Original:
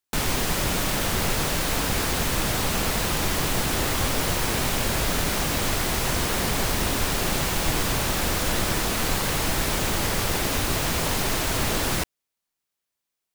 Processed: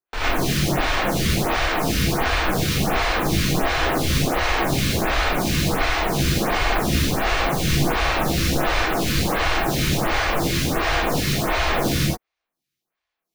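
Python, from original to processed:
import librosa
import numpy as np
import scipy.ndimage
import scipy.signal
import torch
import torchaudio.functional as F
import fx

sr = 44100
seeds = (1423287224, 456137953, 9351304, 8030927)

y = scipy.ndimage.median_filter(x, 5, mode='constant')
y = fx.rev_gated(y, sr, seeds[0], gate_ms=140, shape='rising', drr_db=-8.0)
y = fx.stagger_phaser(y, sr, hz=1.4)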